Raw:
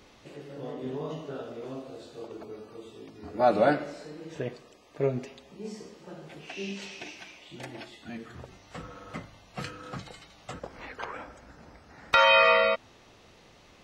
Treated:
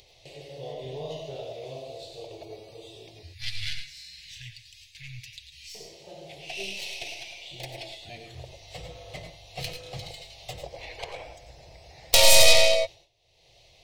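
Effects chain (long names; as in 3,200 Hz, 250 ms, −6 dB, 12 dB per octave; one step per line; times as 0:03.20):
stylus tracing distortion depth 0.49 ms
low-shelf EQ 240 Hz +4.5 dB
noise gate with hold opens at −43 dBFS
0:03.22–0:05.75: Chebyshev band-stop filter 110–1,600 Hz, order 4
upward compression, threshold −45 dBFS
drawn EQ curve 130 Hz 0 dB, 240 Hz −22 dB, 370 Hz −5 dB, 700 Hz +4 dB, 1,400 Hz −21 dB, 2,100 Hz +2 dB, 4,100 Hz +10 dB, 7,000 Hz +4 dB, 11,000 Hz +6 dB
convolution reverb, pre-delay 90 ms, DRR 6 dB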